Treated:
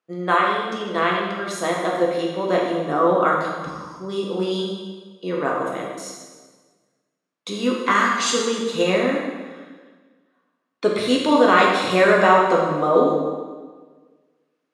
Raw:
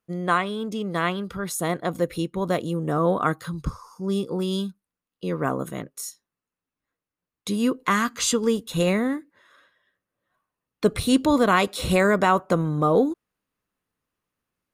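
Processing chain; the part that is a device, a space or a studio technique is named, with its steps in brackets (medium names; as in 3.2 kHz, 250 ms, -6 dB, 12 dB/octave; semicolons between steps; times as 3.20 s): supermarket ceiling speaker (band-pass 320–5600 Hz; reverberation RT60 1.5 s, pre-delay 6 ms, DRR -2.5 dB); trim +1.5 dB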